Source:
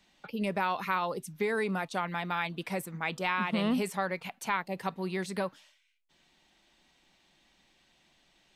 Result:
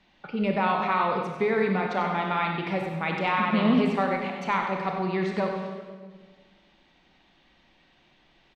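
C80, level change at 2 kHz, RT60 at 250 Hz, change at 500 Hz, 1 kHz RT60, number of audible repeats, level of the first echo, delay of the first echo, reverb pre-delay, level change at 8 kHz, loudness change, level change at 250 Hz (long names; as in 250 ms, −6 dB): 4.0 dB, +4.0 dB, 2.0 s, +7.0 dB, 1.4 s, 1, −8.5 dB, 95 ms, 25 ms, below −10 dB, +6.5 dB, +7.5 dB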